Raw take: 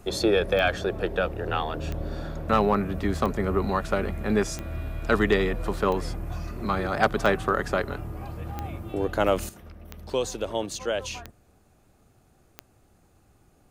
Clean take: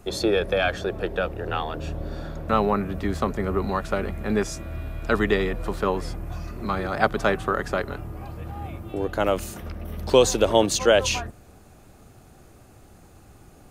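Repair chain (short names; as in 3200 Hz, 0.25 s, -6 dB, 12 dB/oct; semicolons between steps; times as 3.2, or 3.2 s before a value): clip repair -11 dBFS; de-click; gain 0 dB, from 9.49 s +10.5 dB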